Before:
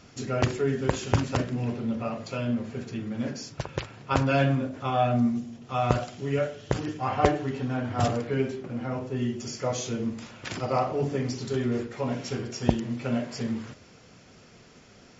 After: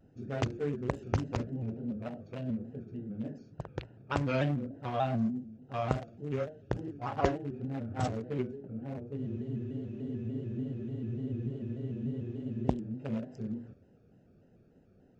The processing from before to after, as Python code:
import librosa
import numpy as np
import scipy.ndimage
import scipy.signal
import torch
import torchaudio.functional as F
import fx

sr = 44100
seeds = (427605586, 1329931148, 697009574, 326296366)

y = fx.wiener(x, sr, points=41)
y = fx.spec_freeze(y, sr, seeds[0], at_s=9.19, hold_s=3.48)
y = fx.vibrato_shape(y, sr, shape='square', rate_hz=3.4, depth_cents=100.0)
y = y * 10.0 ** (-6.5 / 20.0)